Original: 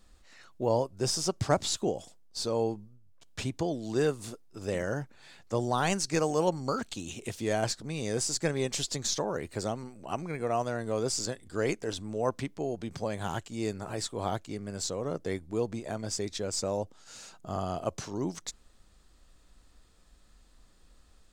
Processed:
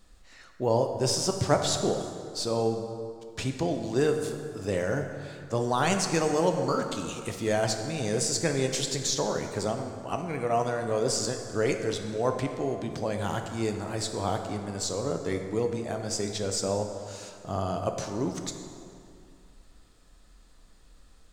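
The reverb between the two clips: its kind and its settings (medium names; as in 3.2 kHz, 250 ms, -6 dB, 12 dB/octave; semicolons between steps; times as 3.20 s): plate-style reverb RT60 2.5 s, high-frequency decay 0.6×, DRR 4.5 dB; trim +2 dB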